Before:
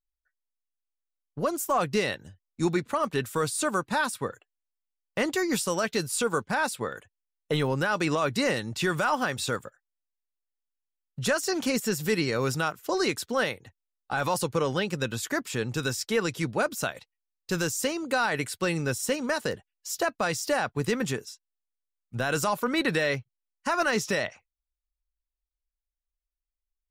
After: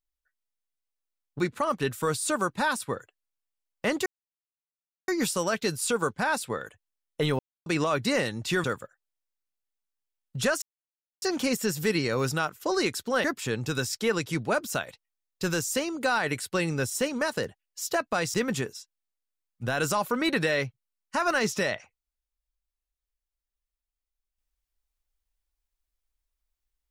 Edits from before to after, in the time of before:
0:01.39–0:02.72: remove
0:05.39: splice in silence 1.02 s
0:07.70–0:07.97: silence
0:08.95–0:09.47: remove
0:11.45: splice in silence 0.60 s
0:13.47–0:15.32: remove
0:20.42–0:20.86: remove

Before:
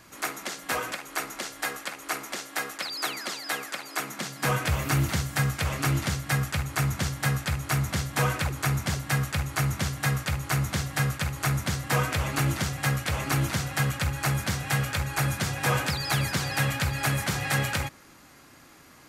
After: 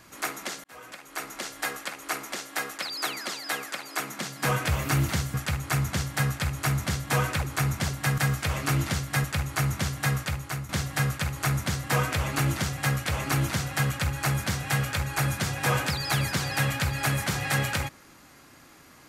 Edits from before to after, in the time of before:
0:00.64–0:01.48: fade in
0:05.34–0:06.40: move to 0:09.24
0:10.19–0:10.69: fade out, to −11.5 dB

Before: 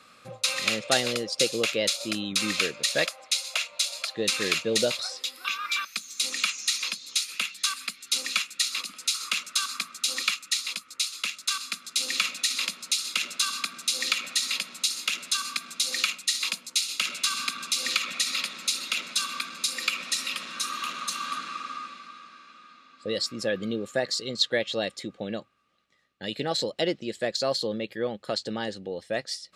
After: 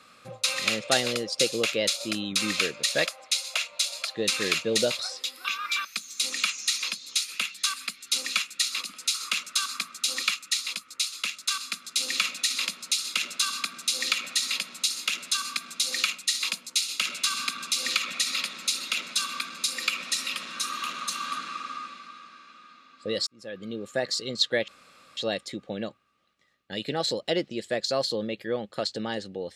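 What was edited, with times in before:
0:23.27–0:24.09: fade in
0:24.68: splice in room tone 0.49 s

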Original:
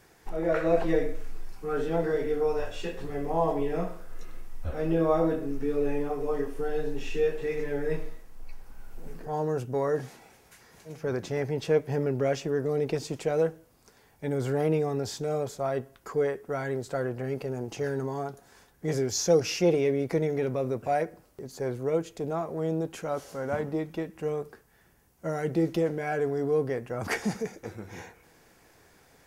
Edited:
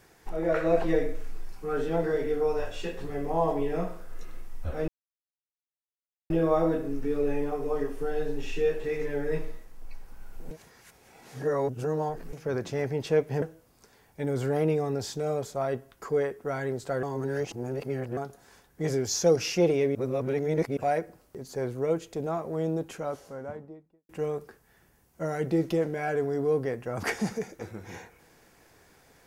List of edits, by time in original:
0:04.88: splice in silence 1.42 s
0:09.09–0:10.91: reverse
0:12.00–0:13.46: remove
0:17.07–0:18.21: reverse
0:19.99–0:20.81: reverse
0:22.76–0:24.13: fade out and dull

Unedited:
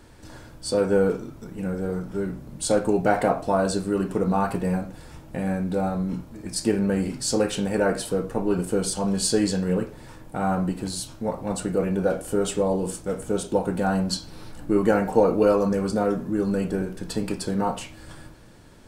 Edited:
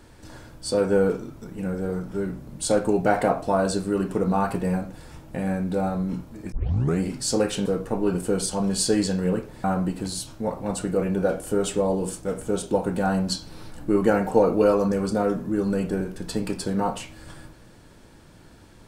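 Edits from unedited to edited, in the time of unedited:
0:06.52: tape start 0.47 s
0:07.66–0:08.10: remove
0:10.08–0:10.45: remove

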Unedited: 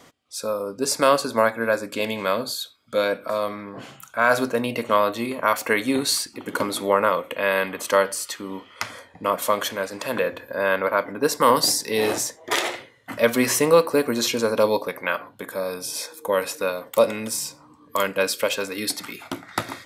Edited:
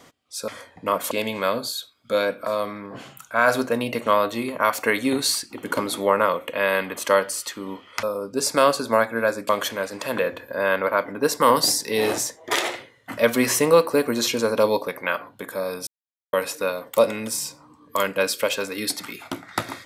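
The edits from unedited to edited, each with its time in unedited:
0:00.48–0:01.94: swap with 0:08.86–0:09.49
0:15.87–0:16.33: silence

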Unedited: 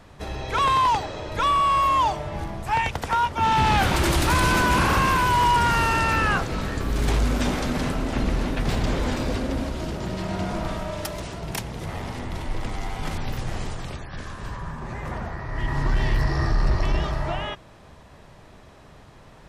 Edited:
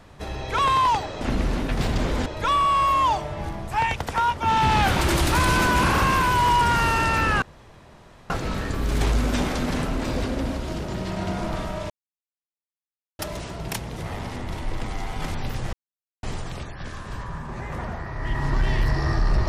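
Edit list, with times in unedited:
0:06.37: splice in room tone 0.88 s
0:08.09–0:09.14: move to 0:01.21
0:11.02: splice in silence 1.29 s
0:13.56: splice in silence 0.50 s

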